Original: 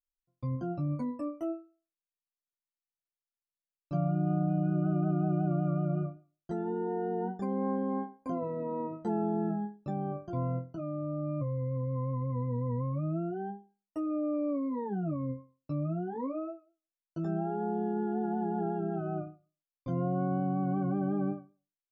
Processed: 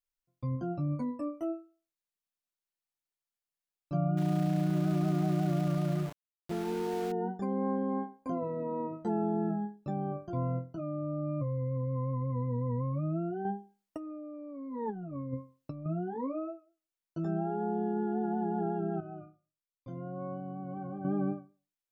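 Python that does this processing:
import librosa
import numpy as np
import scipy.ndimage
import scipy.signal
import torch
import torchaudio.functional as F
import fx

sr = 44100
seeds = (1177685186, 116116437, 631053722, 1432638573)

y = fx.sample_gate(x, sr, floor_db=-39.5, at=(4.17, 7.12))
y = fx.over_compress(y, sr, threshold_db=-37.0, ratio=-0.5, at=(13.45, 15.86))
y = fx.comb_fb(y, sr, f0_hz=110.0, decay_s=0.26, harmonics='all', damping=0.0, mix_pct=80, at=(19.0, 21.05))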